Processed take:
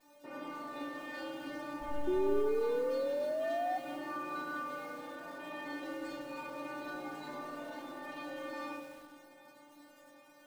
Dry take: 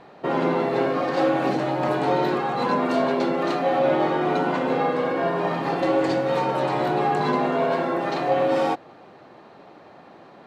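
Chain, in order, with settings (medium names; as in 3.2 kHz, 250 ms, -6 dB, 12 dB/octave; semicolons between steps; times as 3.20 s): thinning echo 778 ms, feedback 81%, high-pass 420 Hz, level -19 dB; on a send at -13.5 dB: reverberation RT60 3.5 s, pre-delay 3 ms; 1.80–2.46 s: on the sum: LPC vocoder at 8 kHz whisper; crackle 320 per s -34 dBFS; inharmonic resonator 290 Hz, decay 0.52 s, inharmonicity 0.002; feedback echo behind a low-pass 72 ms, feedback 50%, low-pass 1.1 kHz, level -5 dB; 2.07–3.78 s: painted sound rise 360–750 Hz -29 dBFS; dynamic bell 620 Hz, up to -6 dB, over -43 dBFS, Q 1.4; bit-crushed delay 192 ms, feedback 35%, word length 8-bit, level -12 dB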